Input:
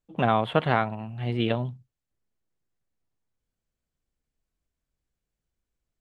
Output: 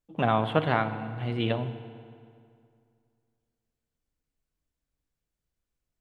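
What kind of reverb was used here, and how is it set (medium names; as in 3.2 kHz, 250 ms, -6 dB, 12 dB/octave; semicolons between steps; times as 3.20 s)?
FDN reverb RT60 2.3 s, low-frequency decay 1.05×, high-frequency decay 0.75×, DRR 9.5 dB; trim -2 dB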